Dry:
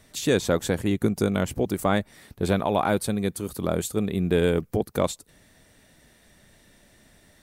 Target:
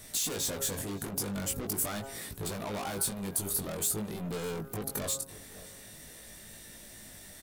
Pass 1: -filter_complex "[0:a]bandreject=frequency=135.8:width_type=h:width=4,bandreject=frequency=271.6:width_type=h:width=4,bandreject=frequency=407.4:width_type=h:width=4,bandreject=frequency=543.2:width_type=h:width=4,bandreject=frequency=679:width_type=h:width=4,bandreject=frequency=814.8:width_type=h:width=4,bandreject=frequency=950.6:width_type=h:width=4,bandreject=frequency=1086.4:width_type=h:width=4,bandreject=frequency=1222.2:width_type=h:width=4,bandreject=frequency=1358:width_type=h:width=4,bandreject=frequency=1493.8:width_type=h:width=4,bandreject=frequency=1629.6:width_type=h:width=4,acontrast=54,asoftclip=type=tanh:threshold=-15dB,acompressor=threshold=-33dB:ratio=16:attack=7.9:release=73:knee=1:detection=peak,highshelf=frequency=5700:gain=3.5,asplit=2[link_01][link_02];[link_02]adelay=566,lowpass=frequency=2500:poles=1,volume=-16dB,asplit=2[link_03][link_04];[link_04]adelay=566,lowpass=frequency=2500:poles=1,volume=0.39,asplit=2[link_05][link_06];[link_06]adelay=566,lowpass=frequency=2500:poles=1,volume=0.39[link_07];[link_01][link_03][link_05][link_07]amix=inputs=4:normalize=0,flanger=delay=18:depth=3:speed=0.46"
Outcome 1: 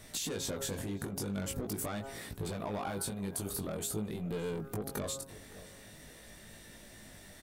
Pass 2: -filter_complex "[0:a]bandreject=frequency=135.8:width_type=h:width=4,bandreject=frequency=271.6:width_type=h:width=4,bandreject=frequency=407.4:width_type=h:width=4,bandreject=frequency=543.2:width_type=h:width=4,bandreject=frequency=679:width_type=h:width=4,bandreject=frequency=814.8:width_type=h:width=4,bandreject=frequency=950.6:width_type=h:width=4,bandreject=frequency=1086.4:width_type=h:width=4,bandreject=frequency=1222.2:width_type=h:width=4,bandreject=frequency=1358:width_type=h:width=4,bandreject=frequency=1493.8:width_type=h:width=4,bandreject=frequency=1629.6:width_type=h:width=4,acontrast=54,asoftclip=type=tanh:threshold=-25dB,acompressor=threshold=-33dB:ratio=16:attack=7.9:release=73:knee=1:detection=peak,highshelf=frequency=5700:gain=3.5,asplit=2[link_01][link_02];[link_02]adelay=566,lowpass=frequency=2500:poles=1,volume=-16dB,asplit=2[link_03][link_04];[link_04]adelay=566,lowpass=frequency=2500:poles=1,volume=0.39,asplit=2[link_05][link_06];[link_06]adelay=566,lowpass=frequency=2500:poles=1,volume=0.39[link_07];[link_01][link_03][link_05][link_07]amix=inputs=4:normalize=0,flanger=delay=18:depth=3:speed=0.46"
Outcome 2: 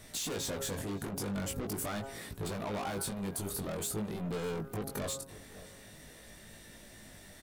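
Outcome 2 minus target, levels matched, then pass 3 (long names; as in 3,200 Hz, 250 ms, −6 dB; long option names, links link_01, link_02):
8,000 Hz band −3.5 dB
-filter_complex "[0:a]bandreject=frequency=135.8:width_type=h:width=4,bandreject=frequency=271.6:width_type=h:width=4,bandreject=frequency=407.4:width_type=h:width=4,bandreject=frequency=543.2:width_type=h:width=4,bandreject=frequency=679:width_type=h:width=4,bandreject=frequency=814.8:width_type=h:width=4,bandreject=frequency=950.6:width_type=h:width=4,bandreject=frequency=1086.4:width_type=h:width=4,bandreject=frequency=1222.2:width_type=h:width=4,bandreject=frequency=1358:width_type=h:width=4,bandreject=frequency=1493.8:width_type=h:width=4,bandreject=frequency=1629.6:width_type=h:width=4,acontrast=54,asoftclip=type=tanh:threshold=-25dB,acompressor=threshold=-33dB:ratio=16:attack=7.9:release=73:knee=1:detection=peak,highshelf=frequency=5700:gain=14,asplit=2[link_01][link_02];[link_02]adelay=566,lowpass=frequency=2500:poles=1,volume=-16dB,asplit=2[link_03][link_04];[link_04]adelay=566,lowpass=frequency=2500:poles=1,volume=0.39,asplit=2[link_05][link_06];[link_06]adelay=566,lowpass=frequency=2500:poles=1,volume=0.39[link_07];[link_01][link_03][link_05][link_07]amix=inputs=4:normalize=0,flanger=delay=18:depth=3:speed=0.46"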